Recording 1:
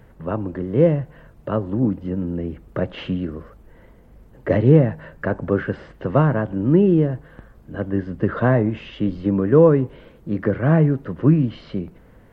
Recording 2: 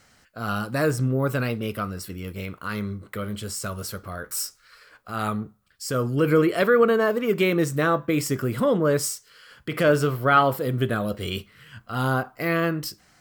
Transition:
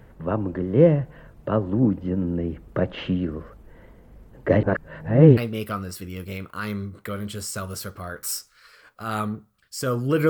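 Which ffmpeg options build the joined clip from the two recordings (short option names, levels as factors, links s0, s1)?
-filter_complex "[0:a]apad=whole_dur=10.29,atrim=end=10.29,asplit=2[s0][s1];[s0]atrim=end=4.632[s2];[s1]atrim=start=4.628:end=5.372,asetpts=PTS-STARTPTS,areverse[s3];[1:a]atrim=start=1.448:end=6.37[s4];[s2][s3]acrossfade=d=0.004:c1=hsin:c2=hsin[s5];[s5][s4]acrossfade=d=0.004:c1=hsin:c2=hsin"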